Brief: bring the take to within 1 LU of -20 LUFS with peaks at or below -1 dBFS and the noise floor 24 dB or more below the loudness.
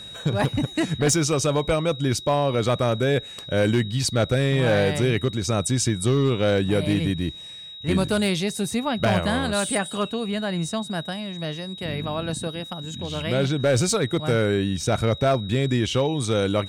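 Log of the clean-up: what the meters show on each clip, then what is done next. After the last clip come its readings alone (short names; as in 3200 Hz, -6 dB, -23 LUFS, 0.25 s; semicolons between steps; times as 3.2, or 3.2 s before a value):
clipped 0.8%; flat tops at -13.5 dBFS; steady tone 3800 Hz; tone level -37 dBFS; loudness -23.5 LUFS; peak -13.5 dBFS; loudness target -20.0 LUFS
-> clip repair -13.5 dBFS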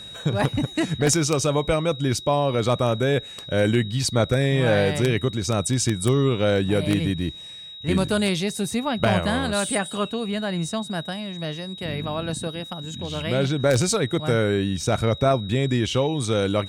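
clipped 0.0%; steady tone 3800 Hz; tone level -37 dBFS
-> notch 3800 Hz, Q 30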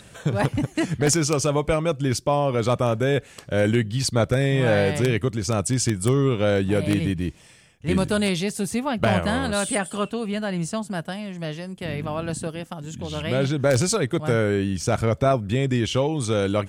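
steady tone none; loudness -23.5 LUFS; peak -5.0 dBFS; loudness target -20.0 LUFS
-> gain +3.5 dB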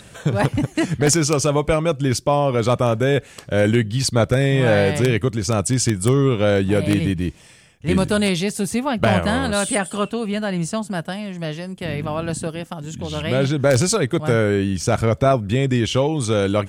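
loudness -20.0 LUFS; peak -1.5 dBFS; noise floor -45 dBFS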